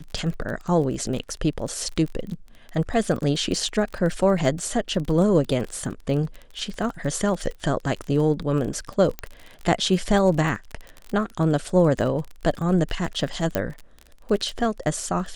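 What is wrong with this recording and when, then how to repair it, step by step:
surface crackle 28 per second −29 dBFS
0:09.19: click −16 dBFS
0:13.55: click −8 dBFS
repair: click removal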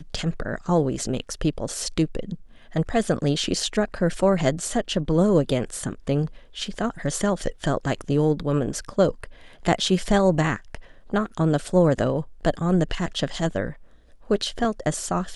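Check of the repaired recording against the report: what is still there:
0:09.19: click

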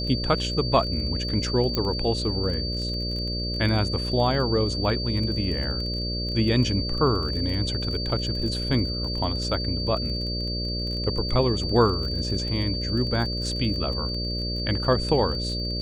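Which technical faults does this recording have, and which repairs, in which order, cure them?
mains buzz 60 Hz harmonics 10 −30 dBFS
surface crackle 22 per second −31 dBFS
whistle 4,600 Hz −30 dBFS
0:01.75: click −12 dBFS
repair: click removal
notch filter 4,600 Hz, Q 30
hum removal 60 Hz, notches 10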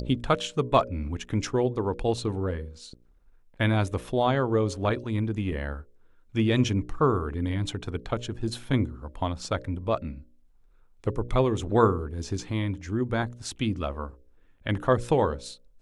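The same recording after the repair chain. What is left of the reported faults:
none of them is left

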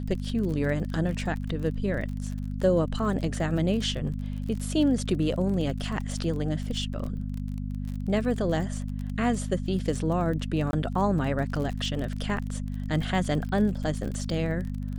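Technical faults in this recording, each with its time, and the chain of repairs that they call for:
surface crackle 32 per second −33 dBFS
mains hum 50 Hz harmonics 5 −32 dBFS
0:10.71–0:10.73: drop-out 21 ms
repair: click removal
hum removal 50 Hz, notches 5
repair the gap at 0:10.71, 21 ms

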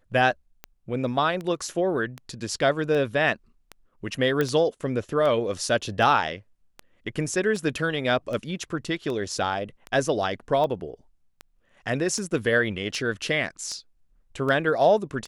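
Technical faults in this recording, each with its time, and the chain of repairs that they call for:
scratch tick 78 rpm −20 dBFS
0:04.41: click −12 dBFS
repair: click removal

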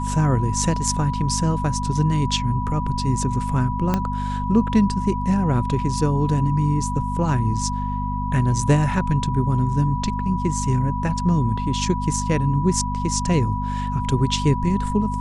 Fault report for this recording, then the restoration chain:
mains hum 50 Hz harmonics 5 −26 dBFS
whistle 980 Hz −27 dBFS
0:03.94: click −8 dBFS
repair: click removal
notch filter 980 Hz, Q 30
hum removal 50 Hz, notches 5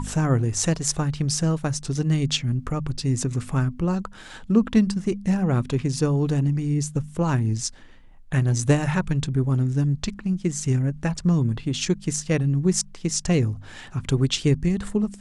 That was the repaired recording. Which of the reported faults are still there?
0:03.94: click

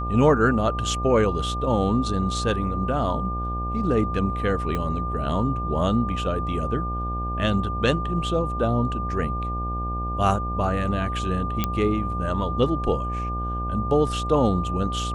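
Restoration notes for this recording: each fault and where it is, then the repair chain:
mains buzz 60 Hz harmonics 14 −29 dBFS
whistle 1,200 Hz −29 dBFS
0:04.75: click −15 dBFS
0:11.64: click −8 dBFS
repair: click removal
hum removal 60 Hz, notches 14
notch filter 1,200 Hz, Q 30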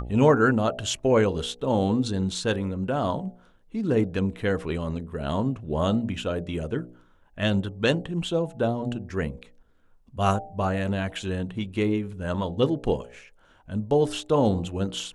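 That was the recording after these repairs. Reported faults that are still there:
0:04.75: click

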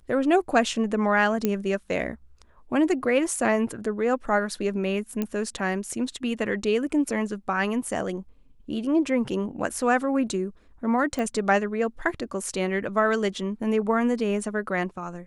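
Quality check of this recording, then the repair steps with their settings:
0:01.45: click −10 dBFS
0:05.22: click −14 dBFS
0:11.19: click −17 dBFS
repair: click removal

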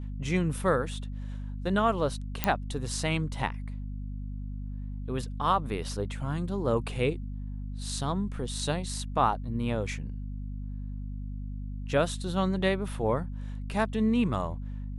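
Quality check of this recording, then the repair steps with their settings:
mains hum 50 Hz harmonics 5 −36 dBFS
0:02.44: click −8 dBFS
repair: click removal
hum removal 50 Hz, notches 5

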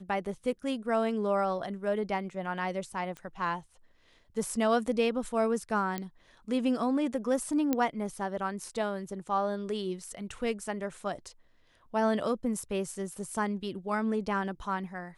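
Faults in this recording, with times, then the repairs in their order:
0:03.17: click −28 dBFS
0:05.98: click −19 dBFS
0:07.73: click −14 dBFS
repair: click removal

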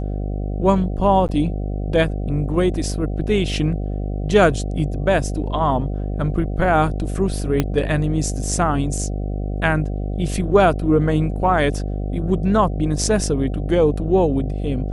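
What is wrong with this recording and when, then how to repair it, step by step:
mains buzz 50 Hz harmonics 15 −24 dBFS
0:01.28–0:01.29: drop-out 9.4 ms
0:07.60: click −5 dBFS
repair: click removal
hum removal 50 Hz, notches 15
repair the gap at 0:01.28, 9.4 ms

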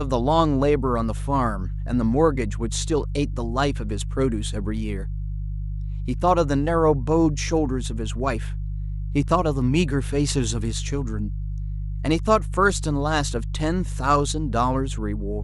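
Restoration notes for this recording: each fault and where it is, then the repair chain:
mains hum 50 Hz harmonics 3 −28 dBFS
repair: hum removal 50 Hz, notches 3

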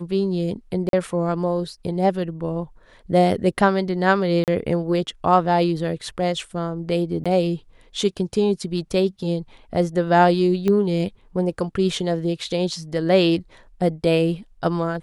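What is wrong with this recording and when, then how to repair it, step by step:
0:00.89–0:00.93: drop-out 42 ms
0:04.44–0:04.48: drop-out 38 ms
0:07.24–0:07.26: drop-out 16 ms
0:10.68: click −11 dBFS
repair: click removal
repair the gap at 0:00.89, 42 ms
repair the gap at 0:04.44, 38 ms
repair the gap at 0:07.24, 16 ms

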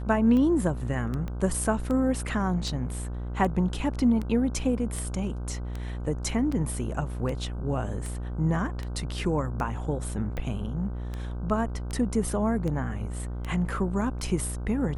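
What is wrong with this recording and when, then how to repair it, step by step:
mains buzz 60 Hz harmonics 26 −33 dBFS
scratch tick 78 rpm −21 dBFS
0:01.28: click −23 dBFS
0:04.96: drop-out 3 ms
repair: click removal
hum removal 60 Hz, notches 26
repair the gap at 0:04.96, 3 ms

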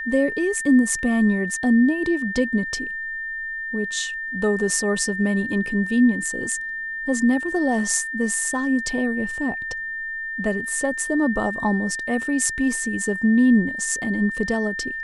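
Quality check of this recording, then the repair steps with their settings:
whistle 1,800 Hz −27 dBFS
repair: notch filter 1,800 Hz, Q 30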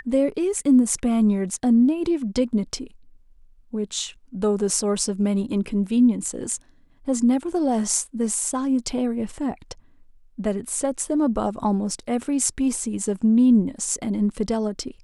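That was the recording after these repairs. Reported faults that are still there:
none of them is left

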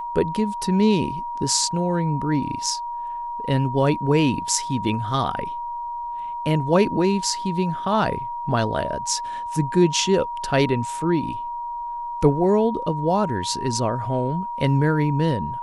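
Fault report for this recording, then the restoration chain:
whistle 950 Hz −27 dBFS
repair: notch filter 950 Hz, Q 30

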